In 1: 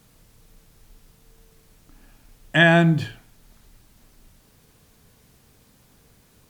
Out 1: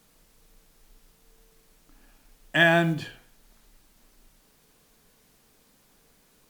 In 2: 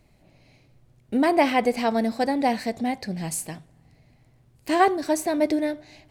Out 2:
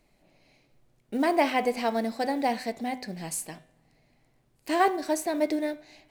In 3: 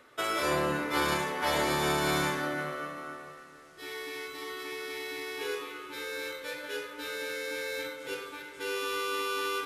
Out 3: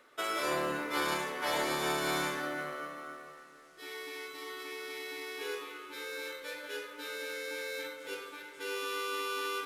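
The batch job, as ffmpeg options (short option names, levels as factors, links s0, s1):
-af "equalizer=f=88:w=0.97:g=-14.5,bandreject=f=125.8:t=h:w=4,bandreject=f=251.6:t=h:w=4,bandreject=f=377.4:t=h:w=4,bandreject=f=503.2:t=h:w=4,bandreject=f=629:t=h:w=4,bandreject=f=754.8:t=h:w=4,bandreject=f=880.6:t=h:w=4,bandreject=f=1006.4:t=h:w=4,bandreject=f=1132.2:t=h:w=4,bandreject=f=1258:t=h:w=4,bandreject=f=1383.8:t=h:w=4,bandreject=f=1509.6:t=h:w=4,bandreject=f=1635.4:t=h:w=4,bandreject=f=1761.2:t=h:w=4,bandreject=f=1887:t=h:w=4,bandreject=f=2012.8:t=h:w=4,bandreject=f=2138.6:t=h:w=4,bandreject=f=2264.4:t=h:w=4,bandreject=f=2390.2:t=h:w=4,bandreject=f=2516:t=h:w=4,bandreject=f=2641.8:t=h:w=4,bandreject=f=2767.6:t=h:w=4,bandreject=f=2893.4:t=h:w=4,bandreject=f=3019.2:t=h:w=4,bandreject=f=3145:t=h:w=4,bandreject=f=3270.8:t=h:w=4,bandreject=f=3396.6:t=h:w=4,bandreject=f=3522.4:t=h:w=4,bandreject=f=3648.2:t=h:w=4,bandreject=f=3774:t=h:w=4,bandreject=f=3899.8:t=h:w=4,bandreject=f=4025.6:t=h:w=4,acrusher=bits=8:mode=log:mix=0:aa=0.000001,volume=0.708"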